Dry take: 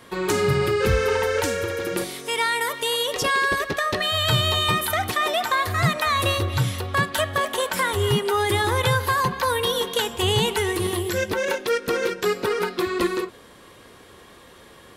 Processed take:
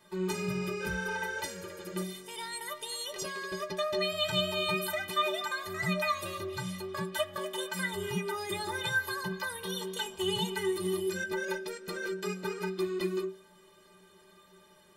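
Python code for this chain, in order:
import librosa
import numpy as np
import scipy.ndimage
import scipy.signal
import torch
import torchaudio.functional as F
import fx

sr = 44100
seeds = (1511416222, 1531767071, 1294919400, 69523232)

y = fx.stiff_resonator(x, sr, f0_hz=180.0, decay_s=0.3, stiffness=0.03)
y = y * 10.0 ** (1.5 / 20.0)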